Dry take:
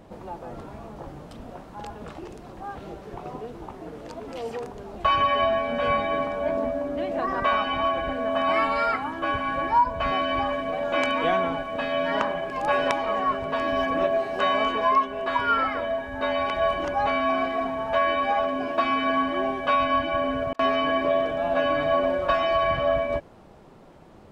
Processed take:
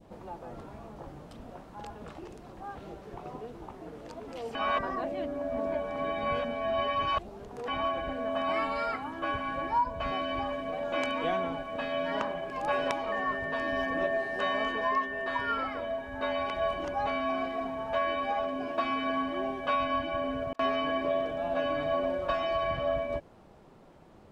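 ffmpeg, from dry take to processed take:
-filter_complex "[0:a]asettb=1/sr,asplit=3[a][b][c];[a]atrim=end=13.124[d];[b]atrim=start=13.12:end=15.52,asetpts=PTS-STARTPTS,afade=t=in:d=0.004:c=qsin,afade=t=out:st=2.396:d=0.004:c=qsin,aeval=exprs='val(0)+0.0501*sin(2*PI*1800*n/s)':c=same[e];[c]atrim=start=15.516[f];[d][e]acrossfade=d=0.004:c1=hsin:c2=qsin[g];[g][f]acrossfade=d=0.004:c1=qsin:c2=hsin,asplit=3[h][i][j];[h]atrim=end=4.552[k];[i]atrim=start=4.548:end=7.682,asetpts=PTS-STARTPTS,areverse[l];[j]atrim=start=7.678[m];[k][l]acrossfade=d=0.004:c1=hsin:c2=hsin[n];[n][m]acrossfade=d=0.004:c1=hsin:c2=hsin,adynamicequalizer=threshold=0.0251:dfrequency=1500:dqfactor=0.73:tfrequency=1500:tqfactor=0.73:attack=5:release=100:ratio=0.375:range=2:mode=cutabove:tftype=bell,volume=-5.5dB"

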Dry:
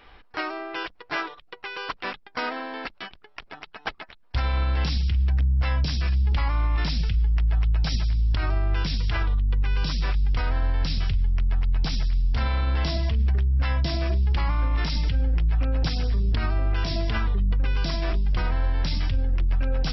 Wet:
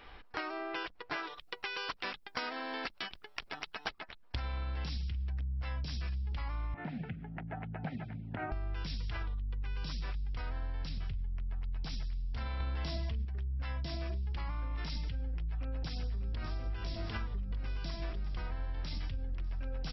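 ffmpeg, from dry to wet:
-filter_complex "[0:a]asettb=1/sr,asplit=3[a][b][c];[a]atrim=end=1.234[d];[b]atrim=start=1.23:end=3.99,asetpts=PTS-STARTPTS,afade=t=in:d=0.004:c=qsin,afade=t=out:st=2.756:d=0.004:c=qsin,highshelf=f=3.8k:g=11[e];[c]atrim=start=3.986[f];[d][e]acrossfade=d=0.004:c1=hsin:c2=qsin[g];[g][f]acrossfade=d=0.004:c1=qsin:c2=hsin,asettb=1/sr,asplit=3[h][i][j];[h]atrim=end=6.744[k];[i]atrim=start=6.74:end=8.52,asetpts=PTS-STARTPTS,afade=t=in:d=0.004:c=qsin,afade=t=out:st=1.776:d=0.004:c=qsin,highpass=f=130:w=0.5412,highpass=f=130:w=1.3066,equalizer=f=240:t=q:w=4:g=5,equalizer=f=740:t=q:w=4:g=8,equalizer=f=1.1k:t=q:w=4:g=-10,lowpass=f=2k:w=0.5412,lowpass=f=2k:w=1.3066[l];[j]atrim=start=8.516[m];[k][l]acrossfade=d=0.004:c1=hsin:c2=qsin[n];[n][m]acrossfade=d=0.004:c1=qsin:c2=hsin,asettb=1/sr,asplit=3[o][p][q];[o]atrim=end=10.894[r];[p]atrim=start=10.89:end=11.64,asetpts=PTS-STARTPTS,afade=t=in:d=0.004:c=qsin,afade=t=out:st=0.746:d=0.004:c=qsin,highshelf=f=4k:g=-10.5[s];[q]atrim=start=11.636[t];[r][s]acrossfade=d=0.004:c1=hsin:c2=qsin[u];[u][t]acrossfade=d=0.004:c1=qsin:c2=hsin,asettb=1/sr,asplit=3[v][w][x];[v]atrim=end=12.604[y];[w]atrim=start=12.6:end=13.25,asetpts=PTS-STARTPTS,afade=t=in:d=0.004:c=qsin,afade=t=out:st=0.646:d=0.004:c=qsin,acontrast=88[z];[x]atrim=start=13.246[aa];[y][z]acrossfade=d=0.004:c1=hsin:c2=qsin[ab];[ab][aa]acrossfade=d=0.004:c1=qsin:c2=hsin,asplit=2[ac][ad];[ad]afade=t=in:st=15.43:d=0.01,afade=t=out:st=16.59:d=0.01,aecho=0:1:600|1200|1800|2400|3000|3600|4200|4800|5400|6000|6600:0.421697|0.295188|0.206631|0.144642|0.101249|0.0708745|0.0496122|0.0347285|0.02431|0.017017|0.0119119[ae];[ac][ae]amix=inputs=2:normalize=0,acompressor=threshold=-33dB:ratio=6,volume=-2dB"

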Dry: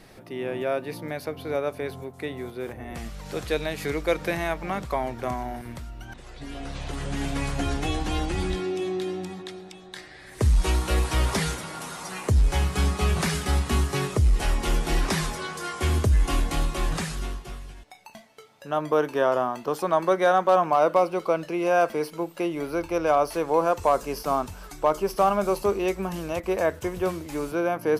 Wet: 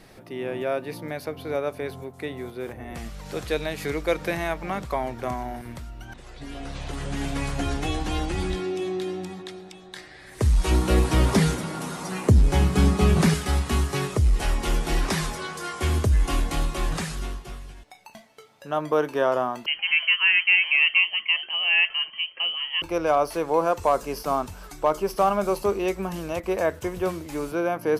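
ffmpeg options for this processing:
-filter_complex "[0:a]asettb=1/sr,asplit=3[a][b][c];[a]atrim=end=10.714[d];[b]atrim=start=10.71:end=13.34,asetpts=PTS-STARTPTS,afade=t=in:d=0.004:c=qsin,afade=t=out:st=2.626:d=0.004:c=qsin,equalizer=f=220:w=0.54:g=10[e];[c]atrim=start=13.336[f];[d][e]acrossfade=d=0.004:c1=hsin:c2=qsin[g];[g][f]acrossfade=d=0.004:c1=qsin:c2=hsin,asettb=1/sr,asplit=3[h][i][j];[h]atrim=end=19.664[k];[i]atrim=start=19.66:end=22.82,asetpts=PTS-STARTPTS,afade=t=in:d=0.004:c=qsin,afade=t=out:st=3.156:d=0.004:c=qsin,lowpass=f=2.8k:t=q:w=0.5098,lowpass=f=2.8k:t=q:w=0.6013,lowpass=f=2.8k:t=q:w=0.9,lowpass=f=2.8k:t=q:w=2.563,afreqshift=-3300[l];[j]atrim=start=22.816[m];[k][l]acrossfade=d=0.004:c1=hsin:c2=qsin[n];[n][m]acrossfade=d=0.004:c1=qsin:c2=hsin"

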